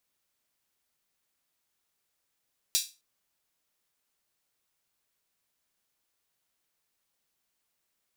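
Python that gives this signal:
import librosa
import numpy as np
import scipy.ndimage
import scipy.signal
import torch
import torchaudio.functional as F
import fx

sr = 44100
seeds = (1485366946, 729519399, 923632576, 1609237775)

y = fx.drum_hat_open(sr, length_s=0.26, from_hz=4100.0, decay_s=0.28)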